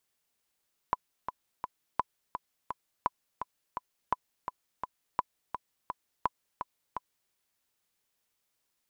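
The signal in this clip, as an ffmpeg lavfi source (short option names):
-f lavfi -i "aevalsrc='pow(10,(-13-8*gte(mod(t,3*60/169),60/169))/20)*sin(2*PI*1000*mod(t,60/169))*exp(-6.91*mod(t,60/169)/0.03)':d=6.39:s=44100"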